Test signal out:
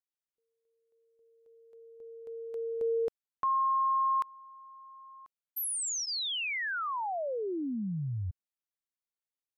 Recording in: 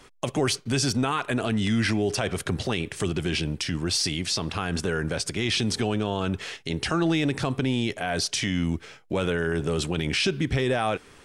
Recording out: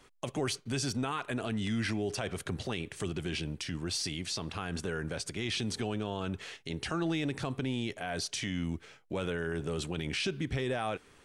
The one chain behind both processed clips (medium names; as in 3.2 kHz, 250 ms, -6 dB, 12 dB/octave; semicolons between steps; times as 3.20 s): band-stop 5.2 kHz, Q 20; trim -8.5 dB